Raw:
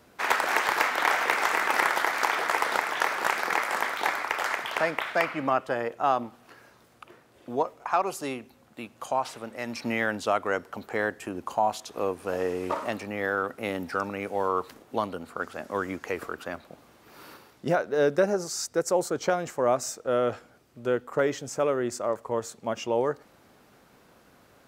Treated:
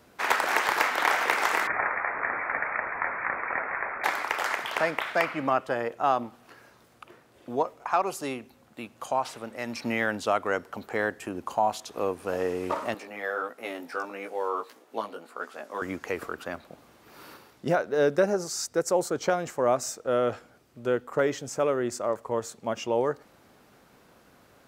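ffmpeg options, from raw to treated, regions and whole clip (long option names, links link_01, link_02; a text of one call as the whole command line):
ffmpeg -i in.wav -filter_complex "[0:a]asettb=1/sr,asplit=3[link_01][link_02][link_03];[link_01]atrim=end=1.674[link_04];[link_02]atrim=start=1.67:end=4.04,asetpts=PTS-STARTPTS,afade=type=in:duration=0.004:curve=qsin,afade=type=out:start_time=2.366:duration=0.004:curve=qsin,aeval=exprs='val(0)+0.5*0.015*sgn(val(0))':channel_layout=same,flanger=delay=6.2:depth=6.8:regen=-49:speed=1:shape=sinusoidal,lowpass=frequency=2300:width_type=q:width=0.5098,lowpass=frequency=2300:width_type=q:width=0.6013,lowpass=frequency=2300:width_type=q:width=0.9,lowpass=frequency=2300:width_type=q:width=2.563,afreqshift=-2700[link_05];[link_03]atrim=start=4.036[link_06];[link_04][link_05]acrossfade=duration=0.004:curve1=hsin:curve2=qsin[link_07];[link_07][link_06]acrossfade=duration=0.004:curve1=qsin:curve2=hsin,asettb=1/sr,asplit=3[link_08][link_09][link_10];[link_08]atrim=end=12.944[link_11];[link_09]atrim=start=12.94:end=15.82,asetpts=PTS-STARTPTS,afade=type=in:duration=0.004:curve=qsin,afade=type=out:start_time=2.876:duration=0.004:curve=qsin,highpass=330,flanger=delay=16:depth=2.9:speed=1.6[link_12];[link_10]atrim=start=15.816[link_13];[link_11][link_12]acrossfade=duration=0.004:curve1=hsin:curve2=qsin[link_14];[link_14][link_13]acrossfade=duration=0.004:curve1=qsin:curve2=hsin" out.wav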